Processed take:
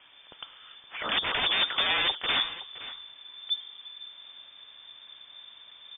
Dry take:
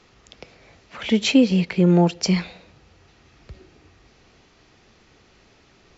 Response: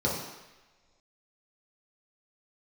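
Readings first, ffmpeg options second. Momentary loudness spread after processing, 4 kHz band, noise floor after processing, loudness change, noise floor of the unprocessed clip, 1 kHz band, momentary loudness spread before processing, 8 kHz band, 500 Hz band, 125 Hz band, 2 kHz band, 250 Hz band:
22 LU, +5.0 dB, −54 dBFS, −8.0 dB, −56 dBFS, −0.5 dB, 7 LU, can't be measured, −16.0 dB, −29.5 dB, +2.5 dB, −29.0 dB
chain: -af "aresample=16000,aeval=exprs='(mod(10.6*val(0)+1,2)-1)/10.6':channel_layout=same,aresample=44100,asubboost=boost=4.5:cutoff=160,aecho=1:1:518:0.168,lowpass=frequency=3100:width_type=q:width=0.5098,lowpass=frequency=3100:width_type=q:width=0.6013,lowpass=frequency=3100:width_type=q:width=0.9,lowpass=frequency=3100:width_type=q:width=2.563,afreqshift=-3600"

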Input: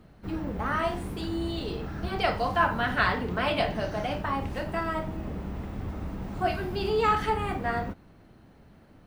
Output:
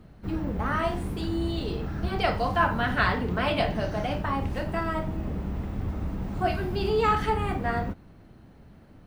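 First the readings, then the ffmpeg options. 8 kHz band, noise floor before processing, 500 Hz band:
can't be measured, −55 dBFS, +1.0 dB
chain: -af "lowshelf=frequency=250:gain=5"

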